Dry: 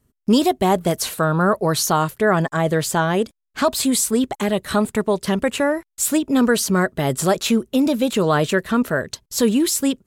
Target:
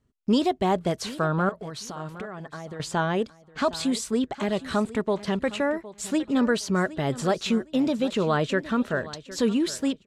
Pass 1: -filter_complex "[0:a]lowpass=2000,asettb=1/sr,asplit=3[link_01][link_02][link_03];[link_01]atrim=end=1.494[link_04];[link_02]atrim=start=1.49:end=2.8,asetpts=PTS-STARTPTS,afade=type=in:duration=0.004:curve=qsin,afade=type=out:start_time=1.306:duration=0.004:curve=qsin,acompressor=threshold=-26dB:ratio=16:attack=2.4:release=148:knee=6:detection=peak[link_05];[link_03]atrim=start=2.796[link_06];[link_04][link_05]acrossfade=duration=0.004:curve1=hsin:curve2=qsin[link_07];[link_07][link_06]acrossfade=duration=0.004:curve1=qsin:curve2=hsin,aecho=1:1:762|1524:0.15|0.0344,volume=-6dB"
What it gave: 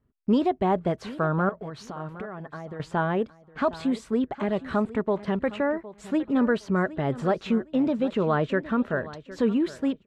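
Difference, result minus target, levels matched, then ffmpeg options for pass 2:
4,000 Hz band −10.0 dB
-filter_complex "[0:a]lowpass=5500,asettb=1/sr,asplit=3[link_01][link_02][link_03];[link_01]atrim=end=1.494[link_04];[link_02]atrim=start=1.49:end=2.8,asetpts=PTS-STARTPTS,afade=type=in:duration=0.004:curve=qsin,afade=type=out:start_time=1.306:duration=0.004:curve=qsin,acompressor=threshold=-26dB:ratio=16:attack=2.4:release=148:knee=6:detection=peak[link_05];[link_03]atrim=start=2.796[link_06];[link_04][link_05]acrossfade=duration=0.004:curve1=hsin:curve2=qsin[link_07];[link_07][link_06]acrossfade=duration=0.004:curve1=qsin:curve2=hsin,aecho=1:1:762|1524:0.15|0.0344,volume=-6dB"

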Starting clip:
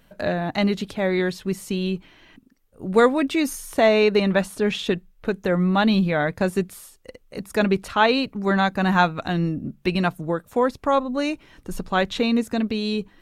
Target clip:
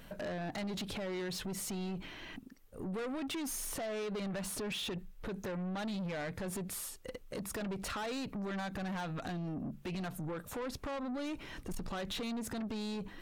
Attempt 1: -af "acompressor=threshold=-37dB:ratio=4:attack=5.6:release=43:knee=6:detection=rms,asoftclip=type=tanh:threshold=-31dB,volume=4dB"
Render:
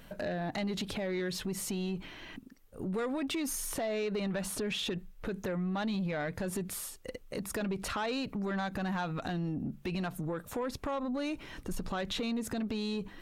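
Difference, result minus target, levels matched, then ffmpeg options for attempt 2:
soft clipping: distortion −8 dB
-af "acompressor=threshold=-37dB:ratio=4:attack=5.6:release=43:knee=6:detection=rms,asoftclip=type=tanh:threshold=-39.5dB,volume=4dB"

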